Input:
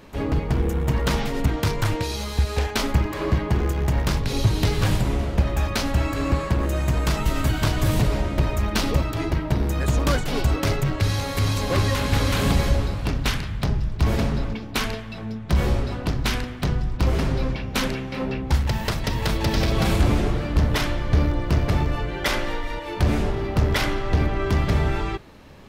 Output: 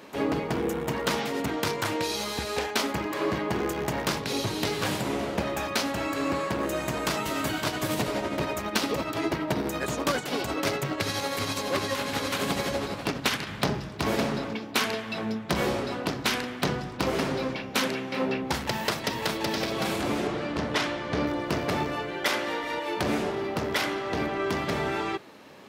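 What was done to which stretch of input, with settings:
7.59–13.47 tremolo 12 Hz, depth 43%
20.27–21.27 Bessel low-pass 6800 Hz
whole clip: HPF 250 Hz 12 dB/oct; vocal rider 0.5 s

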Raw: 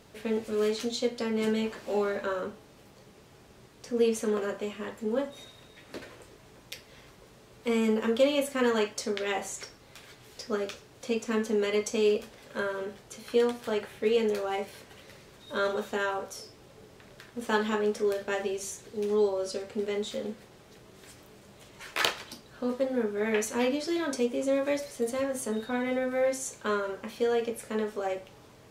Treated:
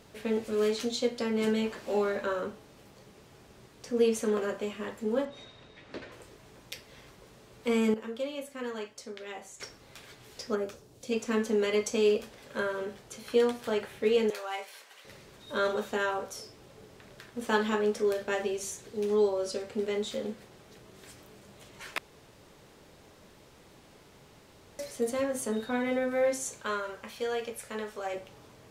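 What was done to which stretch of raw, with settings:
5.25–6.12 LPF 4600 Hz
7.94–9.6 gain -11 dB
10.54–11.11 bell 5000 Hz -> 1100 Hz -12.5 dB 2.1 oct
14.3–15.05 HPF 810 Hz
21.98–24.79 room tone
26.62–28.14 bell 280 Hz -9.5 dB 1.9 oct

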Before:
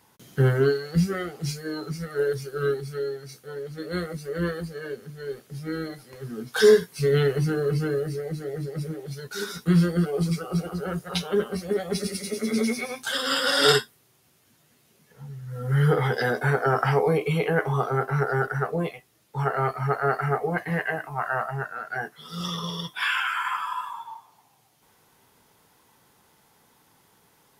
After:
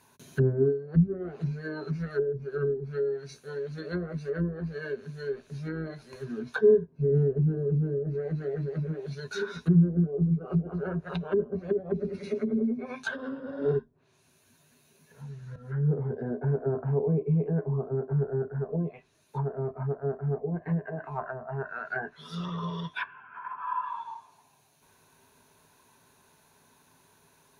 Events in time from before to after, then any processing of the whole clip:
7.36–7.94 bell 3300 Hz +8 dB 1.2 oct
15.56–16.16 fade in, from -14.5 dB
whole clip: treble ducked by the level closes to 360 Hz, closed at -22.5 dBFS; ripple EQ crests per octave 1.5, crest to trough 8 dB; gain -2 dB

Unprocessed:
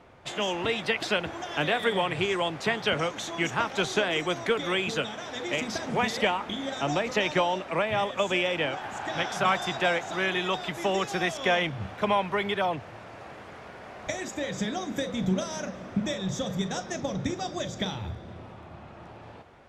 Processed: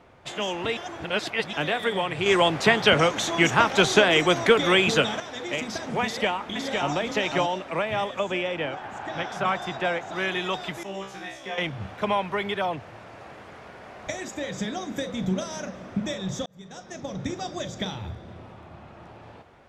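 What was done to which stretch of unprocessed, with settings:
0.77–1.53 reverse
2.26–5.2 gain +8 dB
6.04–6.95 echo throw 0.51 s, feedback 10%, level -3.5 dB
8.19–10.16 high shelf 3300 Hz -8.5 dB
10.83–11.58 resonator 65 Hz, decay 0.44 s, mix 100%
16.46–17.35 fade in

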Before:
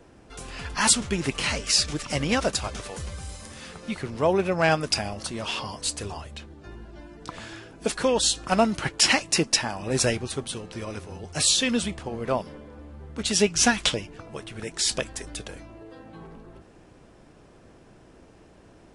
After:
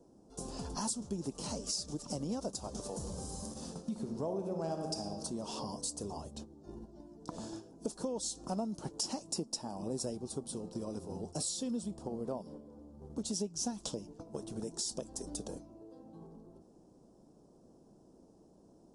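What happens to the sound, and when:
2.9–4.96 reverb throw, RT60 1.3 s, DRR 4 dB
9.32–12.69 notch 6200 Hz
whole clip: gate -40 dBFS, range -9 dB; EQ curve 100 Hz 0 dB, 200 Hz +11 dB, 930 Hz +4 dB, 2100 Hz -21 dB, 5400 Hz +6 dB; compressor 4:1, threshold -30 dBFS; gain -7 dB

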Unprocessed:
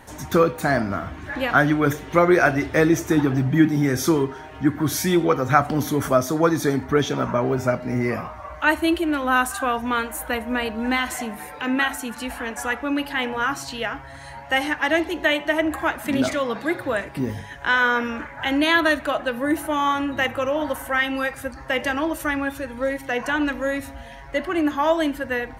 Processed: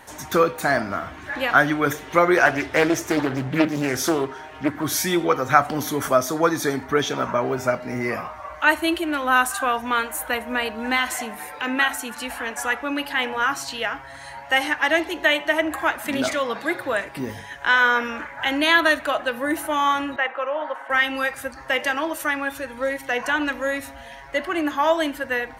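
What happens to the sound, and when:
2.37–4.84 Doppler distortion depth 0.47 ms
20.16–20.9 BPF 520–2000 Hz
21.76–22.51 low shelf 130 Hz -9.5 dB
whole clip: low shelf 330 Hz -11 dB; gain +2.5 dB

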